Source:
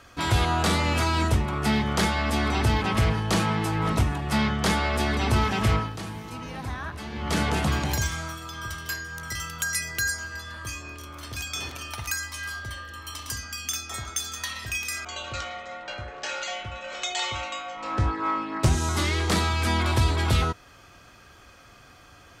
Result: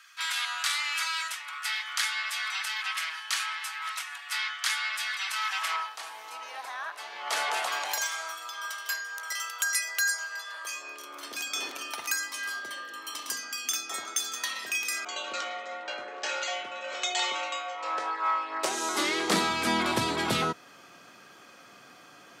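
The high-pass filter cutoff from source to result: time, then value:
high-pass filter 24 dB per octave
0:05.31 1,400 Hz
0:06.20 630 Hz
0:10.46 630 Hz
0:11.38 290 Hz
0:17.24 290 Hz
0:18.31 610 Hz
0:19.53 170 Hz

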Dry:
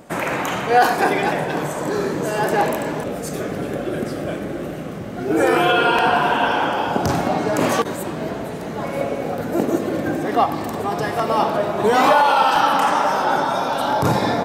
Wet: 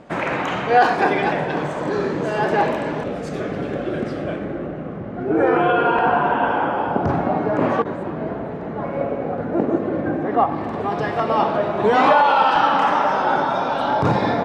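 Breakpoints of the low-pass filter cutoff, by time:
0:04.17 3,800 Hz
0:04.72 1,600 Hz
0:10.43 1,600 Hz
0:10.96 3,300 Hz

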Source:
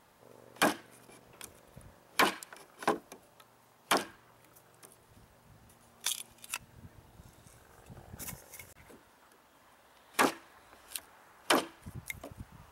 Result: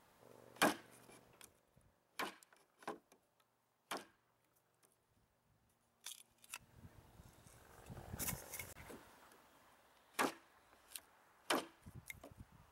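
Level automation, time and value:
0:01.16 −6.5 dB
0:01.65 −18 dB
0:06.21 −18 dB
0:06.87 −7 dB
0:07.42 −7 dB
0:08.24 0 dB
0:08.91 0 dB
0:10.19 −11 dB

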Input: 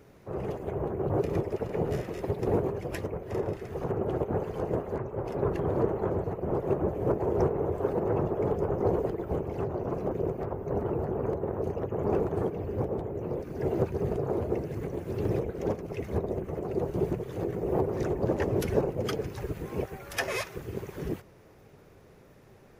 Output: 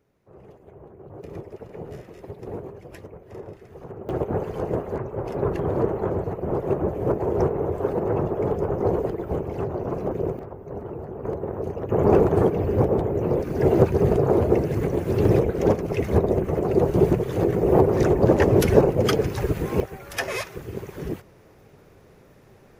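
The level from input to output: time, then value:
−14 dB
from 0:01.23 −7.5 dB
from 0:04.09 +4 dB
from 0:10.39 −4 dB
from 0:11.25 +2 dB
from 0:11.89 +10.5 dB
from 0:19.80 +3 dB

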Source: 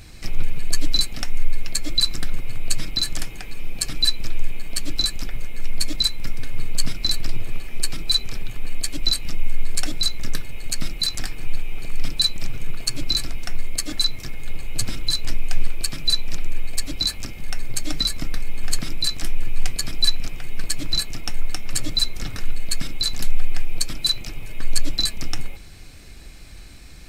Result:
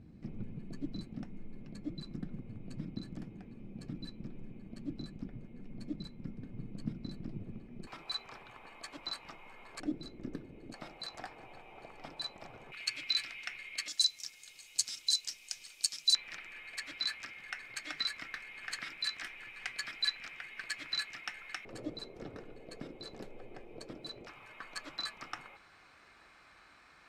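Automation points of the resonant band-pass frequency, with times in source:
resonant band-pass, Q 2.1
210 Hz
from 0:07.87 980 Hz
from 0:09.80 300 Hz
from 0:10.74 780 Hz
from 0:12.72 2,300 Hz
from 0:13.88 6,000 Hz
from 0:16.15 1,800 Hz
from 0:21.65 460 Hz
from 0:24.27 1,200 Hz

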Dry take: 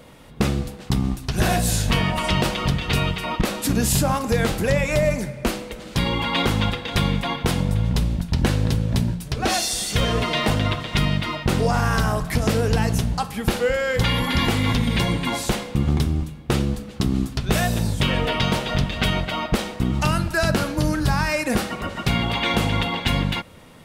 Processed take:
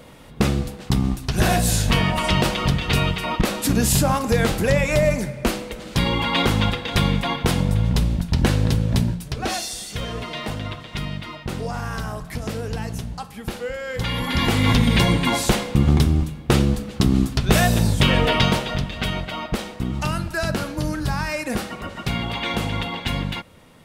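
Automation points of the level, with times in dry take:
0:09.01 +1.5 dB
0:09.90 −8 dB
0:13.80 −8 dB
0:14.73 +4 dB
0:18.41 +4 dB
0:18.82 −3.5 dB

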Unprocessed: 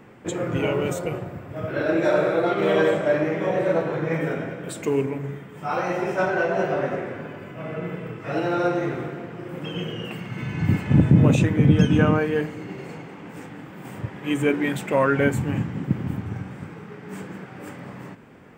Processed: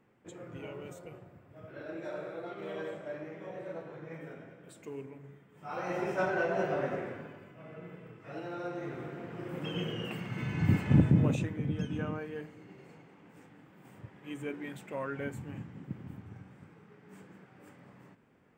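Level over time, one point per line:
0:05.47 −20 dB
0:05.97 −8 dB
0:07.08 −8 dB
0:07.58 −16.5 dB
0:08.66 −16.5 dB
0:09.40 −5.5 dB
0:10.93 −5.5 dB
0:11.63 −17.5 dB

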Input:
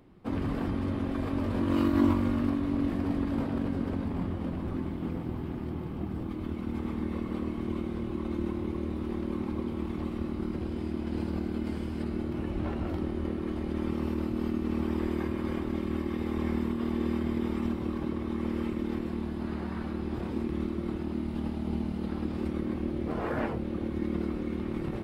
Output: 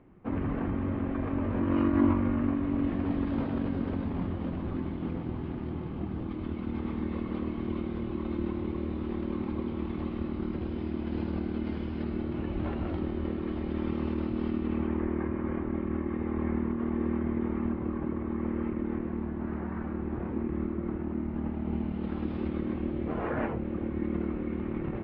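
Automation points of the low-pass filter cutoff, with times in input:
low-pass filter 24 dB per octave
0:02.43 2,500 Hz
0:03.33 3,900 Hz
0:14.55 3,900 Hz
0:15.05 2,100 Hz
0:21.37 2,100 Hz
0:22.32 3,700 Hz
0:23.60 2,600 Hz

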